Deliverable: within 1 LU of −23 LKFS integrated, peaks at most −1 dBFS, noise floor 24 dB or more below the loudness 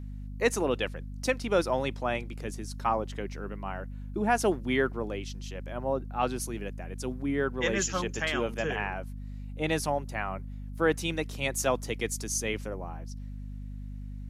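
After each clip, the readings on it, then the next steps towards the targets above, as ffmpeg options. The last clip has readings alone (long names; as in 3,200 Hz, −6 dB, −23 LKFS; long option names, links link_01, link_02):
mains hum 50 Hz; hum harmonics up to 250 Hz; level of the hum −36 dBFS; integrated loudness −31.0 LKFS; sample peak −11.5 dBFS; target loudness −23.0 LKFS
→ -af "bandreject=frequency=50:width_type=h:width=6,bandreject=frequency=100:width_type=h:width=6,bandreject=frequency=150:width_type=h:width=6,bandreject=frequency=200:width_type=h:width=6,bandreject=frequency=250:width_type=h:width=6"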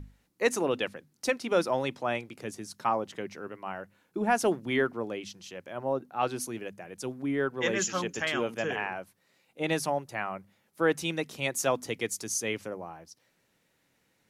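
mains hum none found; integrated loudness −31.0 LKFS; sample peak −12.0 dBFS; target loudness −23.0 LKFS
→ -af "volume=8dB"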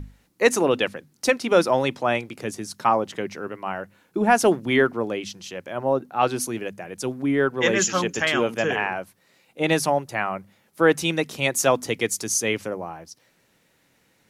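integrated loudness −23.0 LKFS; sample peak −4.0 dBFS; background noise floor −64 dBFS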